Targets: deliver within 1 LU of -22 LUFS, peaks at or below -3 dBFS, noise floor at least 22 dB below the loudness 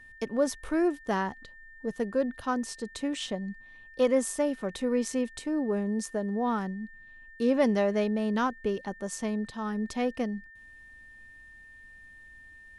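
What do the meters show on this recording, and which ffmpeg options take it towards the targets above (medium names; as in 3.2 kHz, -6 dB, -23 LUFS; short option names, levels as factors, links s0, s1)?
steady tone 1.8 kHz; tone level -49 dBFS; loudness -30.0 LUFS; peak level -12.5 dBFS; loudness target -22.0 LUFS
-> -af "bandreject=f=1800:w=30"
-af "volume=2.51"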